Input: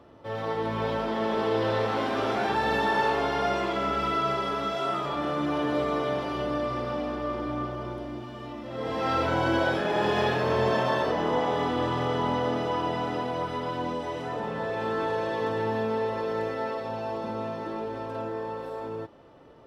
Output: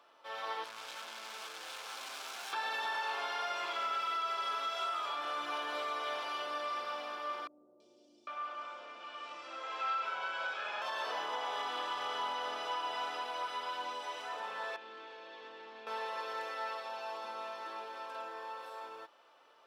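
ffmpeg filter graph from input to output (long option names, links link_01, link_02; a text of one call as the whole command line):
ffmpeg -i in.wav -filter_complex "[0:a]asettb=1/sr,asplit=3[link_01][link_02][link_03];[link_01]atrim=end=0.644[link_04];[link_02]atrim=start=0.64:end=2.53,asetpts=PTS-STARTPTS,afade=type=in:duration=0.004:curve=qsin,afade=type=out:start_time=1.886:duration=0.004:curve=qsin,bass=frequency=250:gain=9,treble=frequency=4000:gain=12,aeval=exprs='(tanh(70.8*val(0)+0.65)-tanh(0.65))/70.8':channel_layout=same[link_05];[link_03]atrim=start=2.526[link_06];[link_04][link_05]acrossfade=duration=0.004:curve1=hsin:curve2=qsin[link_07];[link_07][link_06]acrossfade=duration=0.004:curve1=qsin:curve2=hsin,asettb=1/sr,asplit=3[link_08][link_09][link_10];[link_08]atrim=end=7.474[link_11];[link_09]atrim=start=7.47:end=10.82,asetpts=PTS-STARTPTS,afade=type=in:duration=0.004:curve=qsin,afade=type=out:start_time=3.346:duration=0.004:curve=qsin,acompressor=threshold=-35dB:ratio=2:attack=3.2:release=140:knee=1:detection=peak,highpass=frequency=160:width=0.5412,highpass=frequency=160:width=1.3066,equalizer=frequency=550:width_type=q:width=4:gain=4,equalizer=frequency=1300:width_type=q:width=4:gain=7,equalizer=frequency=2500:width_type=q:width=4:gain=6,lowpass=frequency=7800:width=0.5412,lowpass=frequency=7800:width=1.3066,acrossover=split=400|5300[link_12][link_13][link_14];[link_14]adelay=330[link_15];[link_13]adelay=800[link_16];[link_12][link_16][link_15]amix=inputs=3:normalize=0,atrim=end_sample=147735[link_17];[link_10]atrim=start=10.816[link_18];[link_11][link_17]acrossfade=duration=0.004:curve1=hsin:curve2=qsin[link_19];[link_19][link_18]acrossfade=duration=0.004:curve1=qsin:curve2=hsin,asettb=1/sr,asplit=3[link_20][link_21][link_22];[link_20]atrim=end=14.764[link_23];[link_21]atrim=start=14.76:end=15.87,asetpts=PTS-STARTPTS,afade=type=in:duration=0.004:curve=qsin,afade=type=out:start_time=1.106:duration=0.004:curve=qsin,volume=23.5dB,asoftclip=hard,volume=-23.5dB,highpass=200,lowpass=2400,acrossover=split=380|3000[link_24][link_25][link_26];[link_25]acompressor=threshold=-46dB:ratio=5:attack=3.2:release=140:knee=2.83:detection=peak[link_27];[link_24][link_27][link_26]amix=inputs=3:normalize=0[link_28];[link_22]atrim=start=15.866[link_29];[link_23][link_28]acrossfade=duration=0.004:curve1=hsin:curve2=qsin[link_30];[link_30][link_29]acrossfade=duration=0.004:curve1=qsin:curve2=hsin,highpass=1200,bandreject=frequency=1900:width=7.2,alimiter=level_in=3.5dB:limit=-24dB:level=0:latency=1:release=196,volume=-3.5dB" out.wav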